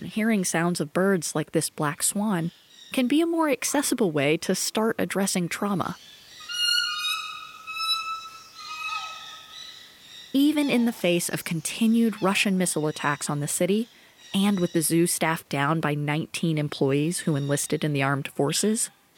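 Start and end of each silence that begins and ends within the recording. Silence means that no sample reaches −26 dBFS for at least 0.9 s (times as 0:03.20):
0:09.05–0:10.35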